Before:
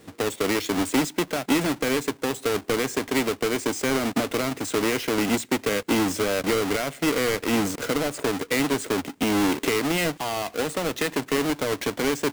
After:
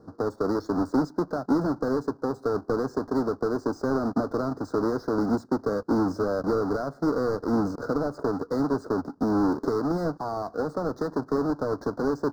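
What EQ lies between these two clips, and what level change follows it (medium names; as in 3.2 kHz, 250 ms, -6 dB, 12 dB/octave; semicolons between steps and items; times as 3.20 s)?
elliptic band-stop 1.4–4.8 kHz, stop band 60 dB; distance through air 300 m; treble shelf 6.7 kHz +5 dB; 0.0 dB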